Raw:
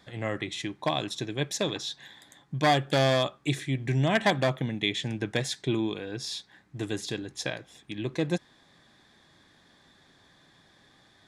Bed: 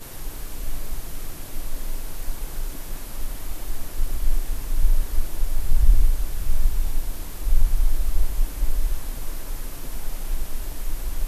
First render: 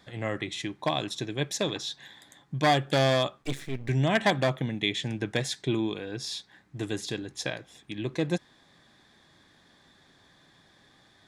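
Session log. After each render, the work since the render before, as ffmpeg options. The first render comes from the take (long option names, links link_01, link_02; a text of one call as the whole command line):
ffmpeg -i in.wav -filter_complex "[0:a]asettb=1/sr,asplit=3[link_01][link_02][link_03];[link_01]atrim=end=3.424[link_04];[link_02]atrim=start=3.42:end=3.89,asetpts=PTS-STARTPTS,afade=type=in:duration=0.004:curve=qsin,afade=type=out:start_time=0.466:duration=0.004:curve=qsin,aeval=exprs='max(val(0),0)':channel_layout=same[link_05];[link_03]atrim=start=3.886[link_06];[link_04][link_05]acrossfade=duration=0.004:curve1=hsin:curve2=qsin[link_07];[link_07][link_06]acrossfade=duration=0.004:curve1=qsin:curve2=hsin" out.wav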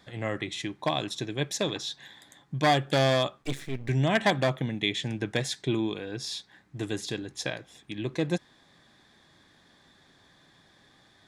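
ffmpeg -i in.wav -af anull out.wav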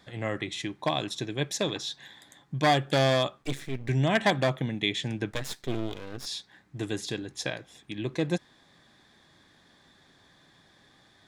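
ffmpeg -i in.wav -filter_complex "[0:a]asplit=3[link_01][link_02][link_03];[link_01]afade=type=out:start_time=5.3:duration=0.02[link_04];[link_02]aeval=exprs='max(val(0),0)':channel_layout=same,afade=type=in:start_time=5.3:duration=0.02,afade=type=out:start_time=6.25:duration=0.02[link_05];[link_03]afade=type=in:start_time=6.25:duration=0.02[link_06];[link_04][link_05][link_06]amix=inputs=3:normalize=0" out.wav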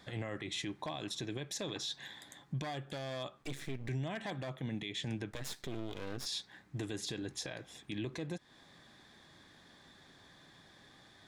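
ffmpeg -i in.wav -af "acompressor=threshold=-33dB:ratio=6,alimiter=level_in=5.5dB:limit=-24dB:level=0:latency=1:release=23,volume=-5.5dB" out.wav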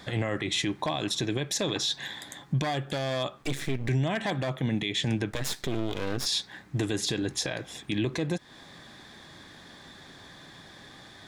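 ffmpeg -i in.wav -af "volume=11dB" out.wav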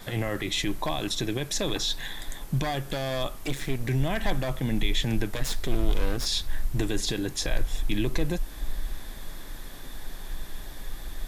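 ffmpeg -i in.wav -i bed.wav -filter_complex "[1:a]volume=-9dB[link_01];[0:a][link_01]amix=inputs=2:normalize=0" out.wav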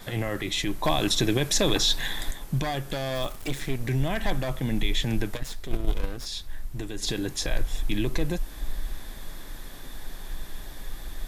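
ffmpeg -i in.wav -filter_complex "[0:a]asettb=1/sr,asplit=3[link_01][link_02][link_03];[link_01]atrim=end=3.154[link_04];[link_02]atrim=start=3.15:end=3.61,asetpts=PTS-STARTPTS,afade=type=in:duration=0.004:curve=qsin,afade=type=out:start_time=0.456:duration=0.004:curve=qsin,acrusher=bits=8:dc=4:mix=0:aa=0.000001[link_05];[link_03]atrim=start=3.606[link_06];[link_04][link_05]acrossfade=duration=0.004:curve1=hsin:curve2=qsin[link_07];[link_07][link_06]acrossfade=duration=0.004:curve1=qsin:curve2=hsin,asplit=3[link_08][link_09][link_10];[link_08]afade=type=out:start_time=5.36:duration=0.02[link_11];[link_09]agate=range=-7dB:threshold=-20dB:ratio=16:release=100:detection=peak,afade=type=in:start_time=5.36:duration=0.02,afade=type=out:start_time=7.01:duration=0.02[link_12];[link_10]afade=type=in:start_time=7.01:duration=0.02[link_13];[link_11][link_12][link_13]amix=inputs=3:normalize=0,asplit=3[link_14][link_15][link_16];[link_14]atrim=end=0.842[link_17];[link_15]atrim=start=0.838:end=2.312,asetpts=PTS-STARTPTS,volume=5.5dB[link_18];[link_16]atrim=start=2.308[link_19];[link_17][link_18]acrossfade=duration=0.004:curve1=hsin:curve2=hsin[link_20];[link_20][link_19]acrossfade=duration=0.004:curve1=hsin:curve2=hsin" out.wav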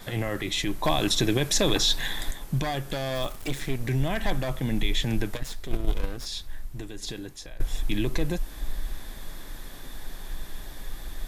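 ffmpeg -i in.wav -filter_complex "[0:a]asplit=2[link_01][link_02];[link_01]atrim=end=7.6,asetpts=PTS-STARTPTS,afade=type=out:start_time=6.39:duration=1.21:silence=0.112202[link_03];[link_02]atrim=start=7.6,asetpts=PTS-STARTPTS,afade=type=in:duration=0.004:curve=hsin:silence=0.112202[link_04];[link_03][link_04]concat=n=2:v=0:a=1" out.wav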